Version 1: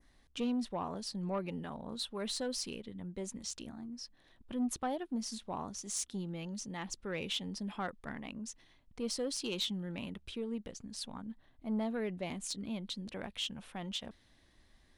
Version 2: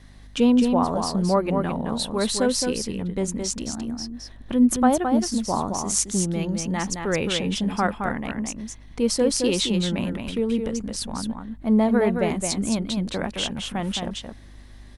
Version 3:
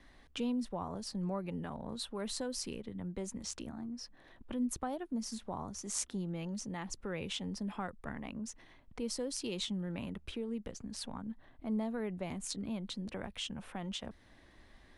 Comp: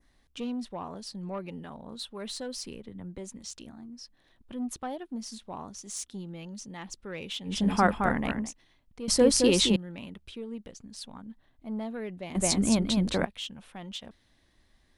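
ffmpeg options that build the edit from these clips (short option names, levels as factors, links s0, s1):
-filter_complex "[1:a]asplit=3[s0][s1][s2];[0:a]asplit=5[s3][s4][s5][s6][s7];[s3]atrim=end=2.642[s8];[2:a]atrim=start=2.638:end=3.182[s9];[s4]atrim=start=3.178:end=7.68[s10];[s0]atrim=start=7.44:end=8.54[s11];[s5]atrim=start=8.3:end=9.082[s12];[s1]atrim=start=9.078:end=9.762[s13];[s6]atrim=start=9.758:end=12.352[s14];[s2]atrim=start=12.348:end=13.252[s15];[s7]atrim=start=13.248[s16];[s8][s9]acrossfade=d=0.004:c1=hsin:c2=hsin[s17];[s17][s10]acrossfade=d=0.004:c1=hsin:c2=hsin[s18];[s18][s11]acrossfade=d=0.24:c1=tri:c2=tri[s19];[s19][s12]acrossfade=d=0.24:c1=tri:c2=tri[s20];[s20][s13]acrossfade=d=0.004:c1=hsin:c2=hsin[s21];[s21][s14]acrossfade=d=0.004:c1=hsin:c2=hsin[s22];[s22][s15]acrossfade=d=0.004:c1=hsin:c2=hsin[s23];[s23][s16]acrossfade=d=0.004:c1=hsin:c2=hsin"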